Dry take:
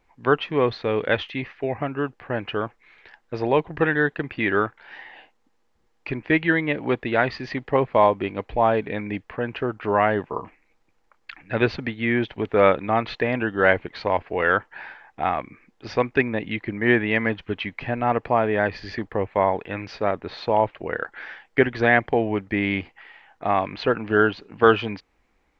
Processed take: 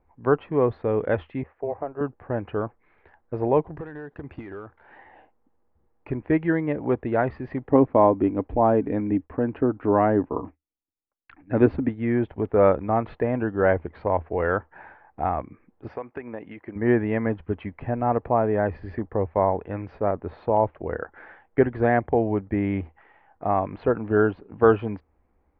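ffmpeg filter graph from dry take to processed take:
-filter_complex "[0:a]asettb=1/sr,asplit=3[s0][s1][s2];[s0]atrim=end=1.434[s3];[s1]atrim=start=1.43:end=2.01,asetpts=PTS-STARTPTS,afade=t=in:d=0.004:c=qsin,afade=t=out:st=0.576:d=0.004:c=qsin,lowpass=f=1100:p=1,lowshelf=f=320:t=q:w=1.5:g=-11.5,tremolo=f=280:d=0.462[s4];[s2]atrim=start=2.006[s5];[s3][s4]acrossfade=d=0.004:c1=hsin:c2=qsin[s6];[s6][s5]acrossfade=d=0.004:c1=qsin:c2=hsin,asettb=1/sr,asplit=3[s7][s8][s9];[s7]atrim=end=3.664[s10];[s8]atrim=start=3.66:end=4.81,asetpts=PTS-STARTPTS,afade=t=in:d=0.004:c=qsin,afade=t=out:st=1.146:d=0.004:c=qsin,bass=f=250:g=-2,treble=f=4000:g=14,acompressor=threshold=0.0355:ratio=12:attack=3.2:release=140:knee=1:detection=peak,asoftclip=type=hard:threshold=0.0398[s11];[s9]atrim=start=4.806[s12];[s10][s11]acrossfade=d=0.004:c1=hsin:c2=qsin[s13];[s13][s12]acrossfade=d=0.004:c1=qsin:c2=hsin,asettb=1/sr,asplit=3[s14][s15][s16];[s14]atrim=end=7.694[s17];[s15]atrim=start=7.69:end=11.89,asetpts=PTS-STARTPTS,afade=t=in:d=0.004:c=qsin,afade=t=out:st=4.196:d=0.004:c=qsin,equalizer=f=280:t=o:w=0.48:g=11.5,agate=range=0.0224:threshold=0.00794:ratio=3:release=100:detection=peak[s18];[s16]atrim=start=11.886[s19];[s17][s18]acrossfade=d=0.004:c1=hsin:c2=qsin[s20];[s20][s19]acrossfade=d=0.004:c1=qsin:c2=hsin,asettb=1/sr,asplit=3[s21][s22][s23];[s21]atrim=end=15.884[s24];[s22]atrim=start=15.88:end=16.76,asetpts=PTS-STARTPTS,afade=t=in:d=0.004:c=qsin,afade=t=out:st=0.876:d=0.004:c=qsin,highpass=f=630:p=1,bandreject=f=3800:w=9.9,acompressor=threshold=0.0447:ratio=4:attack=3.2:release=140:knee=1:detection=peak[s25];[s23]atrim=start=16.756[s26];[s24][s25]acrossfade=d=0.004:c1=hsin:c2=qsin[s27];[s27][s26]acrossfade=d=0.004:c1=qsin:c2=hsin,lowpass=1000,equalizer=f=79:t=o:w=0.43:g=11"

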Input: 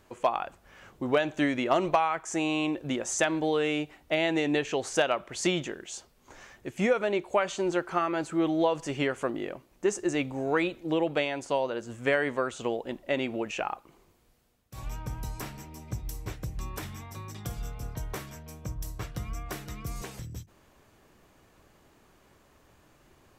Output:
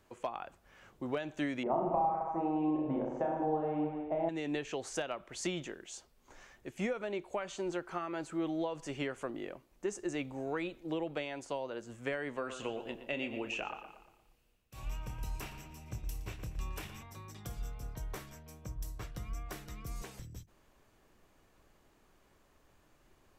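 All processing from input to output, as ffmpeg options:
-filter_complex "[0:a]asettb=1/sr,asplit=3[s0][s1][s2];[s0]atrim=end=1.634[s3];[s1]atrim=start=1.63:end=4.29,asetpts=PTS-STARTPTS,afade=t=in:d=0.004:c=qsin,afade=t=out:st=2.656:d=0.004:c=qsin,lowpass=f=840:t=q:w=3.6,aecho=1:1:30|64.5|104.2|149.8|202.3|262.6|332|411.8:0.794|0.631|0.501|0.398|0.316|0.251|0.2|0.158,atrim=end_sample=117306[s4];[s2]atrim=start=4.286[s5];[s3][s4]acrossfade=d=0.004:c1=hsin:c2=qsin[s6];[s6][s5]acrossfade=d=0.004:c1=qsin:c2=hsin,asettb=1/sr,asplit=3[s7][s8][s9];[s7]atrim=end=12.354[s10];[s8]atrim=start=12.35:end=17.03,asetpts=PTS-STARTPTS,afade=t=in:d=0.004:c=qsin,afade=t=out:st=4.676:d=0.004:c=qsin,equalizer=f=2700:t=o:w=0.33:g=9.5,asplit=2[s11][s12];[s12]adelay=27,volume=0.299[s13];[s11][s13]amix=inputs=2:normalize=0,atrim=end_sample=206388,asplit=2[s14][s15];[s15]adelay=117,lowpass=f=4500:p=1,volume=0.282,asplit=2[s16][s17];[s17]adelay=117,lowpass=f=4500:p=1,volume=0.46,asplit=2[s18][s19];[s19]adelay=117,lowpass=f=4500:p=1,volume=0.46,asplit=2[s20][s21];[s21]adelay=117,lowpass=f=4500:p=1,volume=0.46,asplit=2[s22][s23];[s23]adelay=117,lowpass=f=4500:p=1,volume=0.46[s24];[s14][s16][s18][s20][s22][s24]amix=inputs=6:normalize=0,atrim=end_sample=206388[s25];[s9]atrim=start=17.026[s26];[s10][s25]acrossfade=d=0.004:c1=hsin:c2=qsin[s27];[s27][s26]acrossfade=d=0.004:c1=qsin:c2=hsin,asubboost=boost=2:cutoff=51,acrossover=split=290[s28][s29];[s29]acompressor=threshold=0.0355:ratio=2.5[s30];[s28][s30]amix=inputs=2:normalize=0,volume=0.447"

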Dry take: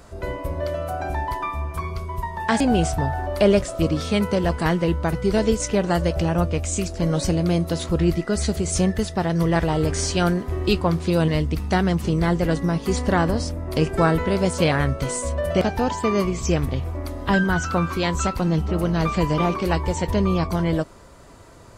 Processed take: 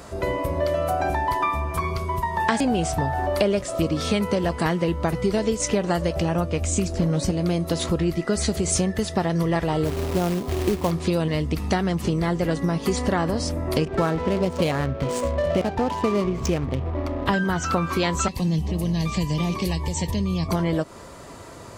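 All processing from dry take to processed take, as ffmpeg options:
-filter_complex "[0:a]asettb=1/sr,asplit=3[s0][s1][s2];[s0]atrim=end=6.614[s3];[s1]atrim=start=6.61:end=7.31,asetpts=PTS-STARTPTS,afade=t=in:d=0.004:c=qsin,afade=t=out:st=0.696:d=0.004:c=qsin,lowshelf=f=350:g=7.5,asoftclip=type=hard:threshold=0.355[s4];[s2]atrim=start=7.306[s5];[s3][s4]acrossfade=d=0.004:c1=hsin:c2=qsin[s6];[s6][s5]acrossfade=d=0.004:c1=qsin:c2=hsin,asettb=1/sr,asplit=3[s7][s8][s9];[s7]atrim=end=9.854[s10];[s8]atrim=start=9.85:end=10.91,asetpts=PTS-STARTPTS,afade=t=in:d=0.004:c=qsin,afade=t=out:st=1.056:d=0.004:c=qsin,lowpass=f=1100:w=0.5412,lowpass=f=1100:w=1.3066,acrusher=bits=3:mode=log:mix=0:aa=0.000001[s11];[s9]atrim=start=10.906[s12];[s10][s11]acrossfade=d=0.004:c1=hsin:c2=qsin[s13];[s13][s12]acrossfade=d=0.004:c1=qsin:c2=hsin,asettb=1/sr,asplit=3[s14][s15][s16];[s14]atrim=end=13.854[s17];[s15]atrim=start=13.85:end=17.26,asetpts=PTS-STARTPTS,afade=t=in:d=0.004:c=qsin,afade=t=out:st=3.406:d=0.004:c=qsin,bandreject=f=398.9:t=h:w=4,bandreject=f=797.8:t=h:w=4,bandreject=f=1196.7:t=h:w=4,bandreject=f=1595.6:t=h:w=4,bandreject=f=1994.5:t=h:w=4,bandreject=f=2393.4:t=h:w=4,bandreject=f=2792.3:t=h:w=4,bandreject=f=3191.2:t=h:w=4,bandreject=f=3590.1:t=h:w=4,bandreject=f=3989:t=h:w=4,bandreject=f=4387.9:t=h:w=4,bandreject=f=4786.8:t=h:w=4,bandreject=f=5185.7:t=h:w=4,bandreject=f=5584.6:t=h:w=4,bandreject=f=5983.5:t=h:w=4,bandreject=f=6382.4:t=h:w=4,bandreject=f=6781.3:t=h:w=4,bandreject=f=7180.2:t=h:w=4,bandreject=f=7579.1:t=h:w=4,bandreject=f=7978:t=h:w=4,bandreject=f=8376.9:t=h:w=4,bandreject=f=8775.8:t=h:w=4,bandreject=f=9174.7:t=h:w=4,bandreject=f=9573.6:t=h:w=4,bandreject=f=9972.5:t=h:w=4,bandreject=f=10371.4:t=h:w=4,bandreject=f=10770.3:t=h:w=4,bandreject=f=11169.2:t=h:w=4,bandreject=f=11568.1:t=h:w=4,bandreject=f=11967:t=h:w=4,adynamicequalizer=threshold=0.0141:dfrequency=1700:dqfactor=0.99:tfrequency=1700:tqfactor=0.99:attack=5:release=100:ratio=0.375:range=2.5:mode=cutabove:tftype=bell,adynamicsmooth=sensitivity=5.5:basefreq=710[s18];[s16]atrim=start=17.256[s19];[s17][s18]acrossfade=d=0.004:c1=hsin:c2=qsin[s20];[s20][s19]acrossfade=d=0.004:c1=qsin:c2=hsin,asettb=1/sr,asplit=3[s21][s22][s23];[s21]atrim=end=18.284[s24];[s22]atrim=start=18.28:end=20.49,asetpts=PTS-STARTPTS,afade=t=in:d=0.004:c=qsin,afade=t=out:st=2.206:d=0.004:c=qsin,acrossover=split=200|3000[s25][s26][s27];[s26]acompressor=threshold=0.01:ratio=2.5:attack=3.2:release=140:knee=2.83:detection=peak[s28];[s25][s28][s27]amix=inputs=3:normalize=0,asuperstop=centerf=1400:order=8:qfactor=3.5[s29];[s23]atrim=start=20.486[s30];[s24][s29]acrossfade=d=0.004:c1=hsin:c2=qsin[s31];[s31][s30]acrossfade=d=0.004:c1=qsin:c2=hsin,acompressor=threshold=0.0562:ratio=6,highpass=f=110:p=1,bandreject=f=1500:w=23,volume=2.24"

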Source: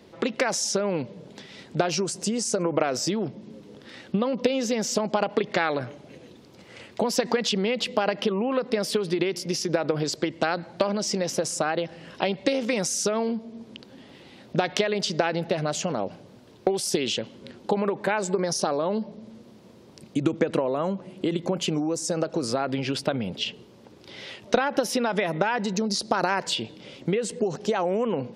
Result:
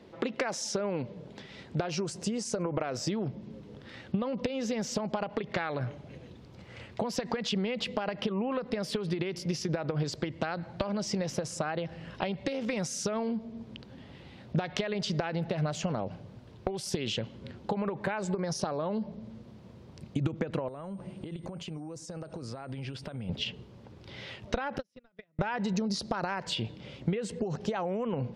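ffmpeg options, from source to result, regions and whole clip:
-filter_complex "[0:a]asettb=1/sr,asplit=3[s0][s1][s2];[s0]atrim=end=20.684[s3];[s1]atrim=start=20.68:end=23.29,asetpts=PTS-STARTPTS,afade=t=in:d=0.004:c=qsin,afade=t=out:st=2.606:d=0.004:c=qsin,acompressor=threshold=0.02:ratio=10:attack=3.2:release=140:knee=1:detection=peak,aeval=exprs='val(0)+0.001*sin(2*PI*8700*n/s)':c=same[s4];[s2]atrim=start=23.286[s5];[s3][s4]acrossfade=d=0.004:c1=hsin:c2=qsin[s6];[s6][s5]acrossfade=d=0.004:c1=qsin:c2=hsin,asettb=1/sr,asplit=3[s7][s8][s9];[s7]atrim=end=24.784[s10];[s8]atrim=start=24.78:end=25.39,asetpts=PTS-STARTPTS,afade=t=in:d=0.004:c=qsin,afade=t=out:st=0.606:d=0.004:c=qsin,agate=range=0.00708:threshold=0.1:ratio=16:release=100:detection=peak,equalizer=f=860:t=o:w=0.75:g=-10[s11];[s9]atrim=start=25.386[s12];[s10][s11]acrossfade=d=0.004:c1=hsin:c2=qsin[s13];[s13][s12]acrossfade=d=0.004:c1=qsin:c2=hsin,highshelf=f=5300:g=-12,acompressor=threshold=0.0562:ratio=6,asubboost=boost=4.5:cutoff=130,volume=0.841"

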